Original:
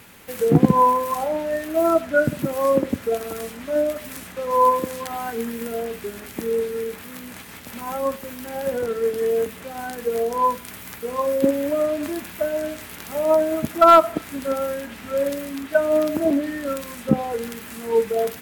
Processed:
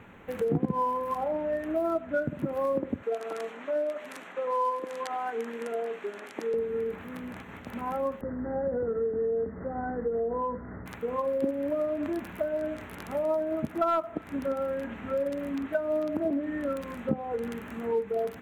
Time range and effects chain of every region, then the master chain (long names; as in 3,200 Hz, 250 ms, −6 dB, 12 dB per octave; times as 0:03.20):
0:03.03–0:06.54: band-pass filter 420–8,000 Hz + high-shelf EQ 4,000 Hz +7.5 dB
0:08.21–0:10.86: spectral tilt −2.5 dB per octave + downward compressor 2 to 1, threshold −21 dBFS + Chebyshev low-pass with heavy ripple 2,000 Hz, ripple 3 dB
whole clip: adaptive Wiener filter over 9 samples; downward compressor 3 to 1, threshold −28 dBFS; high-shelf EQ 3,400 Hz −10.5 dB